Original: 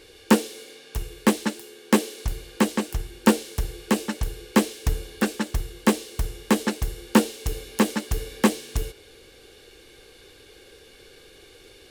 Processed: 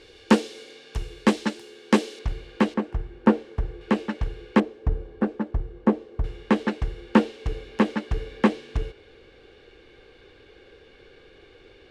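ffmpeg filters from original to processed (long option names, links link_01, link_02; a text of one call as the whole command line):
ffmpeg -i in.wav -af "asetnsamples=nb_out_samples=441:pad=0,asendcmd='2.19 lowpass f 3100;2.74 lowpass f 1500;3.81 lowpass f 2500;4.6 lowpass f 1000;6.24 lowpass f 2600',lowpass=5300" out.wav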